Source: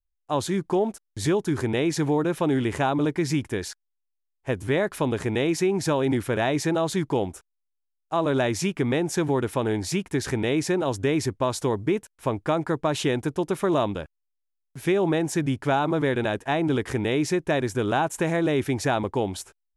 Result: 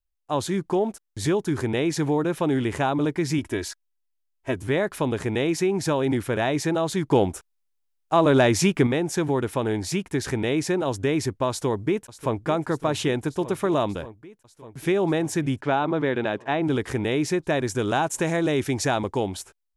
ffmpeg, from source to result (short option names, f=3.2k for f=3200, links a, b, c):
-filter_complex "[0:a]asettb=1/sr,asplit=3[a][b][c];[a]atrim=end=3.384[d];[b]atrim=start=3.38:end=4.56,asetpts=PTS-STARTPTS,afade=t=in:d=0.004:c=qsin,afade=t=out:st=1.176:d=0.004:c=qsin,aecho=1:1:3.1:0.65,atrim=end_sample=52038[e];[c]atrim=start=4.556[f];[d][e]acrossfade=d=0.004:c1=hsin:c2=qsin[g];[g][f]acrossfade=d=0.004:c1=qsin:c2=hsin,asettb=1/sr,asplit=3[h][i][j];[h]atrim=end=7.114[k];[i]atrim=start=7.11:end=8.87,asetpts=PTS-STARTPTS,afade=t=in:d=0.004:c=qsin,afade=t=out:st=1.756:d=0.004:c=qsin,acontrast=44[l];[j]atrim=start=8.866[m];[k][l]acrossfade=d=0.004:c1=hsin:c2=qsin[n];[n][m]acrossfade=d=0.004:c1=qsin:c2=hsin,asplit=2[o][p];[p]afade=t=in:st=11.49:d=0.01,afade=t=out:st=12.46:d=0.01,aecho=0:1:590|1180|1770|2360|2950|3540|4130|4720|5310|5900|6490:0.199526|0.149645|0.112234|0.0841751|0.0631313|0.0473485|0.0355114|0.0266335|0.0199752|0.0149814|0.011236[q];[o][q]amix=inputs=2:normalize=0,asplit=3[r][s][t];[r]afade=t=out:st=15.61:d=0.02[u];[s]highpass=140,lowpass=4.1k,afade=t=in:st=15.61:d=0.02,afade=t=out:st=16.61:d=0.02[v];[t]afade=t=in:st=16.61:d=0.02[w];[u][v][w]amix=inputs=3:normalize=0,asettb=1/sr,asplit=3[x][y][z];[x]atrim=end=17.674[aa];[y]atrim=start=17.67:end=19.27,asetpts=PTS-STARTPTS,afade=t=in:d=0.004:c=qsin,afade=t=out:st=1.596:d=0.004:c=qsin,equalizer=f=6.5k:t=o:w=1.4:g=6[ab];[z]atrim=start=19.266[ac];[aa][ab]acrossfade=d=0.004:c1=hsin:c2=qsin[ad];[ad][ac]acrossfade=d=0.004:c1=qsin:c2=hsin"